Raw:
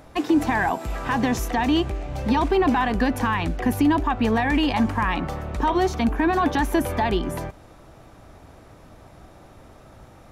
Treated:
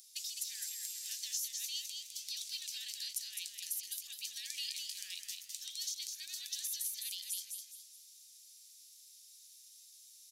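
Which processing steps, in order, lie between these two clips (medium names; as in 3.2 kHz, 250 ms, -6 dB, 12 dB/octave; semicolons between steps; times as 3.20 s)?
inverse Chebyshev high-pass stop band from 1.1 kHz, stop band 70 dB; compression 4:1, threshold -45 dBFS, peak gain reduction 11 dB; frequency-shifting echo 208 ms, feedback 36%, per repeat +88 Hz, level -4.5 dB; trim +7.5 dB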